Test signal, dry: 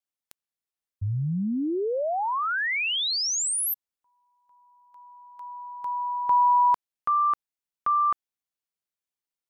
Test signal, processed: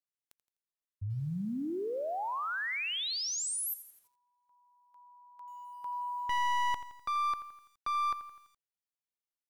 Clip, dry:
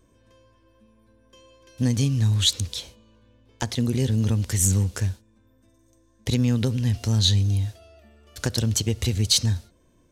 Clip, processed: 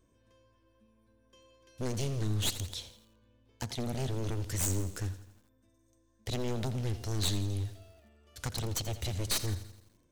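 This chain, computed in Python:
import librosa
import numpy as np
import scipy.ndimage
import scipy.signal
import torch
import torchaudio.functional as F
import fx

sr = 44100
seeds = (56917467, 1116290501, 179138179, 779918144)

y = np.minimum(x, 2.0 * 10.0 ** (-21.5 / 20.0) - x)
y = fx.echo_crushed(y, sr, ms=84, feedback_pct=55, bits=8, wet_db=-13.5)
y = F.gain(torch.from_numpy(y), -8.5).numpy()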